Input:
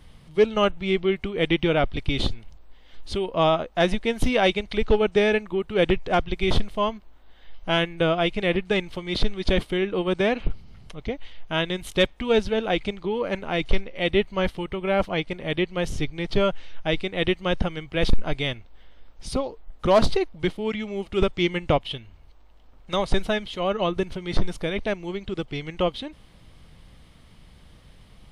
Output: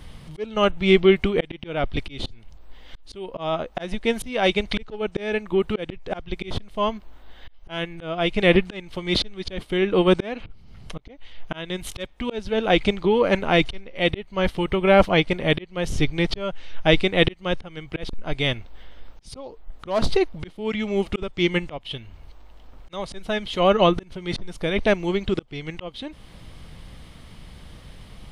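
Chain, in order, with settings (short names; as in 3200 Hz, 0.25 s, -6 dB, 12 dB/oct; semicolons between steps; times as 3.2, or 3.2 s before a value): auto swell 0.539 s; gain +7.5 dB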